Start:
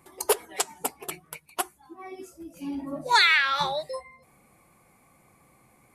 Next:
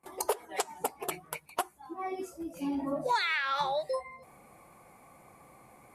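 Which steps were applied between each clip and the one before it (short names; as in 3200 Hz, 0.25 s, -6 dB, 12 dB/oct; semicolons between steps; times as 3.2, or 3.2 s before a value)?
gate with hold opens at -51 dBFS; bell 730 Hz +7.5 dB 1.9 oct; compressor 4:1, threshold -29 dBFS, peak gain reduction 16 dB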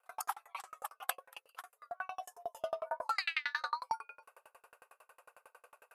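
frequency shift +370 Hz; dB-ramp tremolo decaying 11 Hz, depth 39 dB; gain +3.5 dB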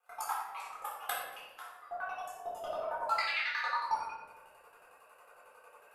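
shoebox room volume 460 m³, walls mixed, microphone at 3.9 m; gain -6.5 dB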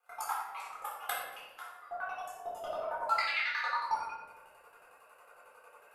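small resonant body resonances 1400/2100 Hz, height 6 dB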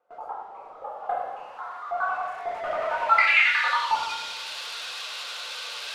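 switching spikes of -28.5 dBFS; low-pass sweep 520 Hz -> 3900 Hz, 0.64–4.06; gate with hold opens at -44 dBFS; gain +7.5 dB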